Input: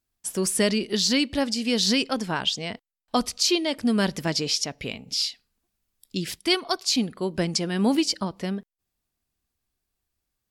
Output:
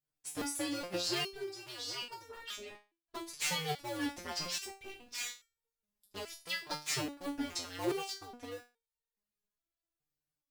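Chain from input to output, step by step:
sub-harmonics by changed cycles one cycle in 2, inverted
0:01.24–0:03.26: flanger 1.6 Hz, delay 2.3 ms, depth 7.5 ms, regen −60%
step-sequenced resonator 2.4 Hz 150–460 Hz

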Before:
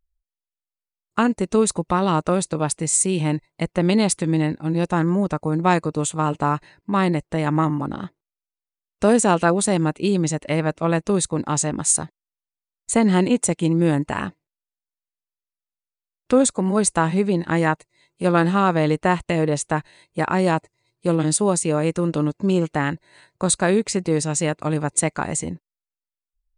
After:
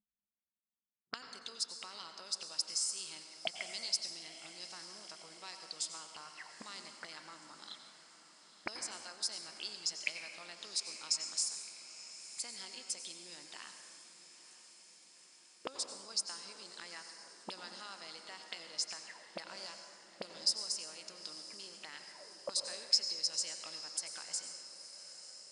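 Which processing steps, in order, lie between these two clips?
low-shelf EQ 98 Hz −9.5 dB
downward compressor 4 to 1, threshold −24 dBFS, peak gain reduction 11 dB
envelope filter 200–4,900 Hz, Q 13, up, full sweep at −26.5 dBFS
feedback delay with all-pass diffusion 963 ms, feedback 66%, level −14 dB
convolution reverb RT60 2.0 s, pre-delay 82 ms, DRR 6 dB
wrong playback speed 24 fps film run at 25 fps
level +12 dB

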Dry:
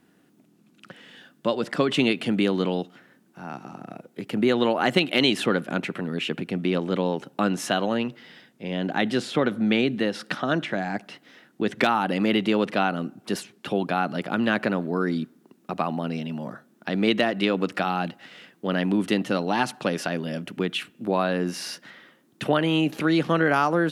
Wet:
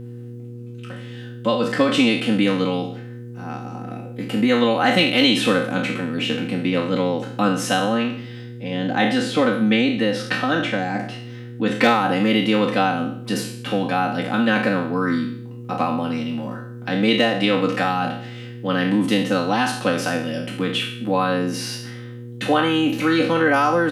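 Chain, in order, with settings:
peak hold with a decay on every bin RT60 0.59 s
comb filter 3.9 ms, depth 89%
hum with harmonics 120 Hz, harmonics 4, −35 dBFS −6 dB per octave

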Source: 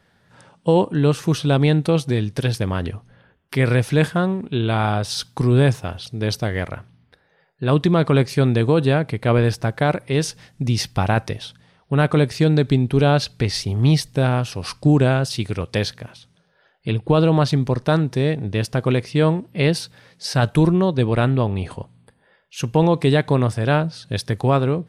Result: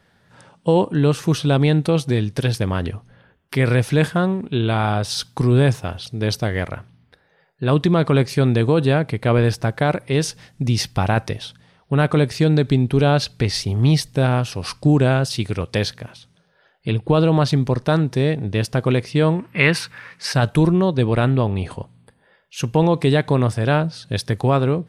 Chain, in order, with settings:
0:19.39–0:20.32: flat-topped bell 1,600 Hz +12.5 dB
in parallel at −3 dB: brickwall limiter −10.5 dBFS, peak gain reduction 10.5 dB
on the sum: level −3.5 dB

